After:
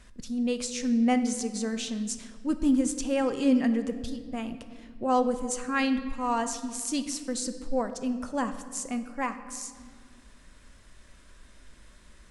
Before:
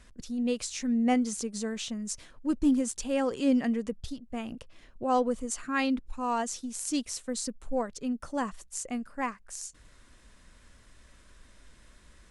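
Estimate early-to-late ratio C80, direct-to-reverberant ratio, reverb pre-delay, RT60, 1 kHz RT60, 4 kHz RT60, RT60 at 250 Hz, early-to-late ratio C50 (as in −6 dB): 12.5 dB, 9.0 dB, 3 ms, 1.8 s, 1.7 s, 1.3 s, 2.5 s, 11.0 dB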